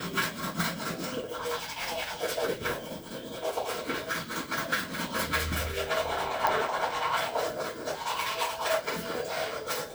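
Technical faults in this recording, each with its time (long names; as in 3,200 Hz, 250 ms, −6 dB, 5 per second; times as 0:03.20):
0:06.47: click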